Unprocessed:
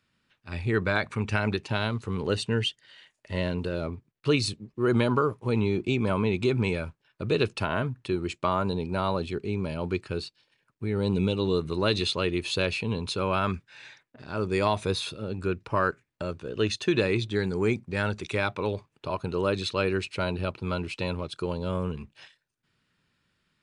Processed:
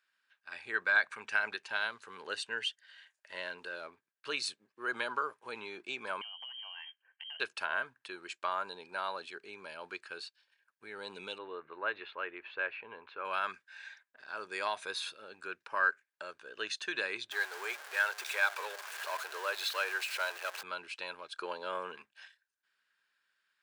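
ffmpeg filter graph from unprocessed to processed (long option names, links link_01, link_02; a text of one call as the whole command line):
ffmpeg -i in.wav -filter_complex "[0:a]asettb=1/sr,asplit=3[link_01][link_02][link_03];[link_01]atrim=end=6.214[link_04];[link_02]atrim=start=6.21:end=7.4,asetpts=PTS-STARTPTS,afade=type=in:duration=0.004:curve=qsin,afade=type=out:start_time=1.186:duration=0.004:curve=qsin,highpass=100,lowpass=frequency=2800:width_type=q:width=0.5098,lowpass=frequency=2800:width_type=q:width=0.6013,lowpass=frequency=2800:width_type=q:width=0.9,lowpass=frequency=2800:width_type=q:width=2.563,afreqshift=-3300,acompressor=threshold=-36dB:ratio=16:attack=3.2:release=140:knee=1:detection=peak[link_05];[link_03]atrim=start=7.396[link_06];[link_04][link_05]acrossfade=duration=0.004:curve1=hsin:curve2=qsin[link_07];[link_07][link_06]acrossfade=duration=0.004:curve1=qsin:curve2=hsin,asettb=1/sr,asplit=3[link_08][link_09][link_10];[link_08]atrim=end=11.384[link_11];[link_09]atrim=start=11.38:end=13.25,asetpts=PTS-STARTPTS,afade=type=in:duration=0.004:curve=qsin,afade=type=out:start_time=1.866:duration=0.004:curve=qsin,lowpass=frequency=2200:width=0.5412,lowpass=frequency=2200:width=1.3066,equalizer=frequency=190:width=2.6:gain=-7[link_12];[link_10]atrim=start=13.246[link_13];[link_11][link_12]acrossfade=duration=0.004:curve1=hsin:curve2=qsin[link_14];[link_14][link_13]acrossfade=duration=0.004:curve1=qsin:curve2=hsin,asettb=1/sr,asplit=3[link_15][link_16][link_17];[link_15]atrim=end=17.314[link_18];[link_16]atrim=start=17.31:end=20.63,asetpts=PTS-STARTPTS,afade=type=in:duration=0.004:curve=qsin,afade=type=out:start_time=3.316:duration=0.004:curve=qsin,aeval=exprs='val(0)+0.5*0.0335*sgn(val(0))':channel_layout=same,highpass=frequency=440:width=0.5412,highpass=frequency=440:width=1.3066[link_19];[link_17]atrim=start=20.626[link_20];[link_18][link_19]acrossfade=duration=0.004:curve1=hsin:curve2=qsin[link_21];[link_21][link_20]acrossfade=duration=0.004:curve1=qsin:curve2=hsin,asettb=1/sr,asplit=3[link_22][link_23][link_24];[link_22]atrim=end=21.374[link_25];[link_23]atrim=start=21.37:end=22.02,asetpts=PTS-STARTPTS,afade=type=in:duration=0.004:curve=qsin,afade=type=out:start_time=0.646:duration=0.004:curve=qsin,acontrast=77,highpass=210,aemphasis=mode=reproduction:type=cd[link_26];[link_24]atrim=start=22.016[link_27];[link_25][link_26]acrossfade=duration=0.004:curve1=hsin:curve2=qsin[link_28];[link_28][link_27]acrossfade=duration=0.004:curve1=qsin:curve2=hsin,highpass=820,equalizer=frequency=1600:width=7.9:gain=12.5,volume=-6dB" out.wav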